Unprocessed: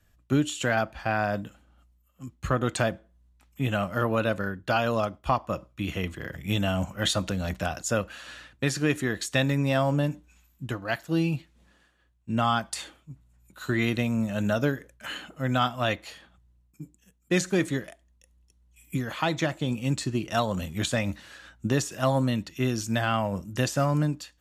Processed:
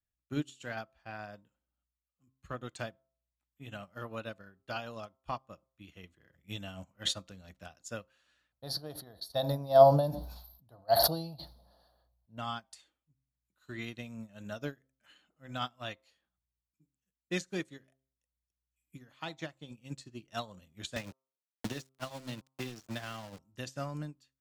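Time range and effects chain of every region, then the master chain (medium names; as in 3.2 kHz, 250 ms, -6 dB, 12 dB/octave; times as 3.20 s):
8.52–12.38 s: FFT filter 100 Hz 0 dB, 360 Hz -8 dB, 670 Hz +12 dB, 1.1 kHz -1 dB, 2.5 kHz -24 dB, 4.4 kHz +7 dB, 7.4 kHz -26 dB, 11 kHz +7 dB + decay stretcher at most 24 dB/s
20.96–23.39 s: small samples zeroed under -29.5 dBFS + three bands compressed up and down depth 100%
whole clip: dynamic bell 4.6 kHz, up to +6 dB, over -46 dBFS, Q 0.79; de-hum 132.5 Hz, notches 10; upward expansion 2.5:1, over -33 dBFS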